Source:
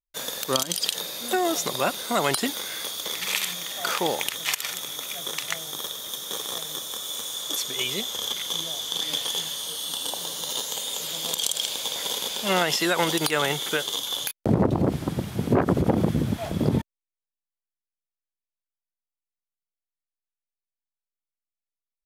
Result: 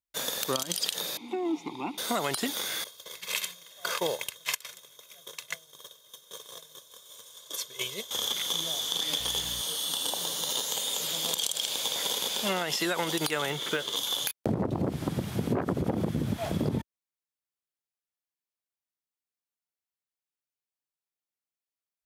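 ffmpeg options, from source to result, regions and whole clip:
-filter_complex "[0:a]asettb=1/sr,asplit=3[s0][s1][s2];[s0]atrim=end=1.174[s3];[s1]atrim=start=1.17:end=1.98,asetpts=PTS-STARTPTS,afade=t=in:d=0.004:c=qsin,afade=t=out:st=0.806:d=0.004:c=qsin,equalizer=f=62:w=0.67:g=11.5,acontrast=37,asplit=3[s4][s5][s6];[s4]bandpass=f=300:t=q:w=8,volume=1[s7];[s5]bandpass=f=870:t=q:w=8,volume=0.501[s8];[s6]bandpass=f=2240:t=q:w=8,volume=0.355[s9];[s7][s8][s9]amix=inputs=3:normalize=0[s10];[s2]atrim=start=1.976[s11];[s3][s10]acrossfade=d=0.004:c1=hsin:c2=qsin[s12];[s12][s11]acrossfade=d=0.004:c1=qsin:c2=hsin,asettb=1/sr,asplit=3[s13][s14][s15];[s13]atrim=end=2.844[s16];[s14]atrim=start=2.84:end=8.11,asetpts=PTS-STARTPTS,afade=t=in:d=0.004:c=qsin,afade=t=out:st=5.266:d=0.004:c=qsin,agate=range=0.0224:threshold=0.0794:ratio=3:release=100:detection=peak,aecho=1:1:1.9:0.61,atrim=end_sample=232407[s17];[s15]atrim=start=8.106[s18];[s16][s17]acrossfade=d=0.004:c1=hsin:c2=qsin[s19];[s19][s18]acrossfade=d=0.004:c1=qsin:c2=hsin,asettb=1/sr,asplit=3[s20][s21][s22];[s20]atrim=end=9.194[s23];[s21]atrim=start=9.19:end=9.61,asetpts=PTS-STARTPTS,afade=t=in:d=0.004:c=qsin,afade=t=out:st=0.416:d=0.004:c=qsin,aeval=exprs='sgn(val(0))*max(abs(val(0))-0.00355,0)':c=same,aeval=exprs='val(0)+0.00794*(sin(2*PI*60*n/s)+sin(2*PI*2*60*n/s)/2+sin(2*PI*3*60*n/s)/3+sin(2*PI*4*60*n/s)/4+sin(2*PI*5*60*n/s)/5)':c=same[s24];[s22]atrim=start=9.606[s25];[s23][s24]acrossfade=d=0.004:c1=hsin:c2=qsin[s26];[s26][s25]acrossfade=d=0.004:c1=qsin:c2=hsin,asettb=1/sr,asplit=3[s27][s28][s29];[s27]atrim=end=13.504[s30];[s28]atrim=start=13.5:end=13.96,asetpts=PTS-STARTPTS,afade=t=in:d=0.004:c=qsin,afade=t=out:st=0.456:d=0.004:c=qsin,highshelf=f=5600:g=-10,acrusher=bits=7:mode=log:mix=0:aa=0.000001,bandreject=f=790:w=6.8[s31];[s29]atrim=start=13.956[s32];[s30][s31]acrossfade=d=0.004:c1=hsin:c2=qsin[s33];[s33][s32]acrossfade=d=0.004:c1=qsin:c2=hsin,highpass=60,acompressor=threshold=0.0562:ratio=6"

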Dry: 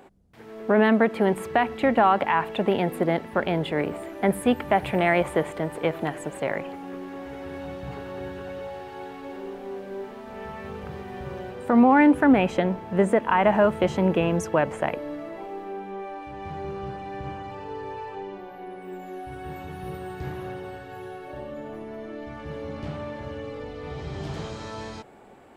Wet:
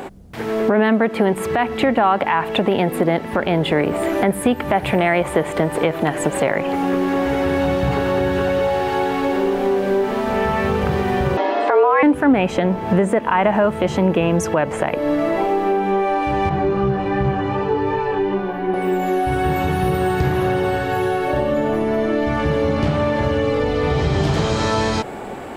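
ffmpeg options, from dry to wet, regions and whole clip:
-filter_complex "[0:a]asettb=1/sr,asplit=3[s0][s1][s2];[s0]atrim=end=11.374[s3];[s1]atrim=start=11.37:end=12.03,asetpts=PTS-STARTPTS,afade=t=in:d=0.004:c=qsin,afade=t=out:st=0.656:d=0.004:c=qsin,lowpass=f=5200:w=0.5412,lowpass=f=5200:w=1.3066,asubboost=boost=11:cutoff=86,afreqshift=210[s4];[s2]atrim=start=12.026[s5];[s3][s4]acrossfade=d=0.004:c1=hsin:c2=qsin[s6];[s6][s5]acrossfade=d=0.004:c1=qsin:c2=hsin,asettb=1/sr,asplit=3[s7][s8][s9];[s7]atrim=end=16.494[s10];[s8]atrim=start=16.49:end=18.74,asetpts=PTS-STARTPTS,afade=t=in:d=0.004:c=qsin,afade=t=out:st=2.246:d=0.004:c=qsin,lowpass=f=2200:p=1,flanger=delay=15:depth=2.4:speed=2.6,asplit=2[s11][s12];[s12]adelay=21,volume=0.631[s13];[s11][s13]amix=inputs=2:normalize=0,atrim=end_sample=99225[s14];[s9]atrim=start=18.736[s15];[s10][s14]acrossfade=d=0.004:c1=hsin:c2=qsin[s16];[s16][s15]acrossfade=d=0.004:c1=qsin:c2=hsin,acompressor=threshold=0.0178:ratio=4,alimiter=level_in=16.8:limit=0.891:release=50:level=0:latency=1,volume=0.596"

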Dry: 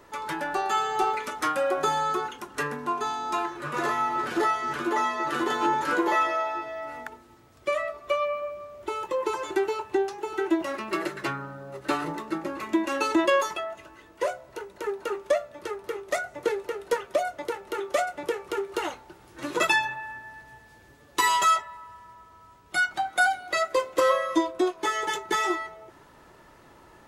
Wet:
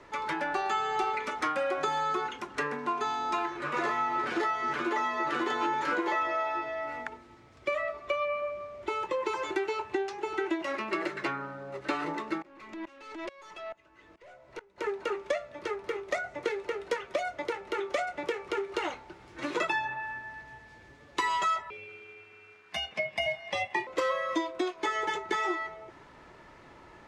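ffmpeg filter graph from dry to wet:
-filter_complex "[0:a]asettb=1/sr,asplit=3[s0][s1][s2];[s0]atrim=end=12.424[s3];[s1]atrim=start=12.42:end=14.78,asetpts=PTS-STARTPTS,afade=t=in:d=0.004:c=qsin,afade=t=out:st=2.356:d=0.004:c=qsin,acompressor=threshold=0.0398:ratio=3:attack=3.2:release=140:knee=1:detection=peak,aeval=exprs='(tanh(44.7*val(0)+0.15)-tanh(0.15))/44.7':c=same,aeval=exprs='val(0)*pow(10,-21*if(lt(mod(-2.3*n/s,1),2*abs(-2.3)/1000),1-mod(-2.3*n/s,1)/(2*abs(-2.3)/1000),(mod(-2.3*n/s,1)-2*abs(-2.3)/1000)/(1-2*abs(-2.3)/1000))/20)':c=same[s4];[s2]atrim=start=14.776[s5];[s3][s4]acrossfade=d=0.004:c1=hsin:c2=qsin[s6];[s6][s5]acrossfade=d=0.004:c1=qsin:c2=hsin,asettb=1/sr,asplit=3[s7][s8][s9];[s7]atrim=end=21.704[s10];[s8]atrim=start=21.7:end=23.87,asetpts=PTS-STARTPTS,afade=t=in:d=0.004:c=qsin,afade=t=out:st=2.166:d=0.004:c=qsin,aeval=exprs='val(0)*sin(2*PI*1400*n/s)':c=same,highpass=f=190:t=q:w=1.8[s11];[s9]atrim=start=23.866[s12];[s10][s11]acrossfade=d=0.004:c1=hsin:c2=qsin[s13];[s13][s12]acrossfade=d=0.004:c1=qsin:c2=hsin,lowpass=5700,equalizer=f=2200:w=4.2:g=5.5,acrossover=split=210|1500[s14][s15][s16];[s14]acompressor=threshold=0.00224:ratio=4[s17];[s15]acompressor=threshold=0.0355:ratio=4[s18];[s16]acompressor=threshold=0.0158:ratio=4[s19];[s17][s18][s19]amix=inputs=3:normalize=0"

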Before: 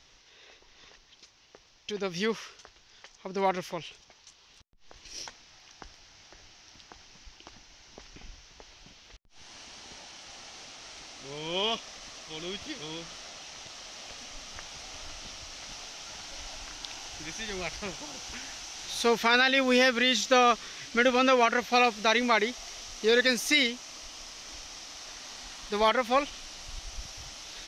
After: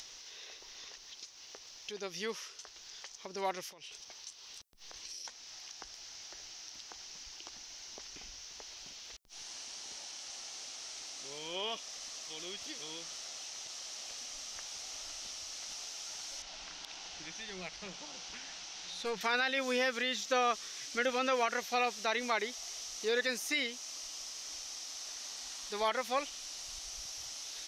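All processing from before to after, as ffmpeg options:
-filter_complex "[0:a]asettb=1/sr,asplit=3[s0][s1][s2];[s0]atrim=end=3.694[s3];[s1]atrim=start=3.69:end=5.25,asetpts=PTS-STARTPTS,afade=t=in:d=0.004:c=qsin,afade=t=out:st=1.556:d=0.004:c=qsin,bandreject=f=6900:w=18,acompressor=threshold=0.00562:ratio=12:attack=3.2:release=140:knee=1:detection=peak[s4];[s2]atrim=start=5.246[s5];[s3][s4]acrossfade=d=0.004:c1=hsin:c2=qsin[s6];[s6][s5]acrossfade=d=0.004:c1=qsin:c2=hsin,asettb=1/sr,asplit=3[s7][s8][s9];[s7]atrim=end=16.424[s10];[s8]atrim=start=16.42:end=19.21,asetpts=PTS-STARTPTS,afade=t=in:d=0.004:c=qsin,afade=t=out:st=2.786:d=0.004:c=qsin,lowpass=3900,equalizer=f=180:t=o:w=0.23:g=12.5,aeval=exprs='(tanh(11.2*val(0)+0.4)-tanh(0.4))/11.2':c=same[s11];[s9]atrim=start=19.206[s12];[s10][s11]acrossfade=d=0.004:c1=hsin:c2=qsin[s13];[s13][s12]acrossfade=d=0.004:c1=qsin:c2=hsin,acrossover=split=2800[s14][s15];[s15]acompressor=threshold=0.01:ratio=4:attack=1:release=60[s16];[s14][s16]amix=inputs=2:normalize=0,bass=f=250:g=-9,treble=f=4000:g=12,acompressor=mode=upward:threshold=0.0251:ratio=2.5,volume=0.398"

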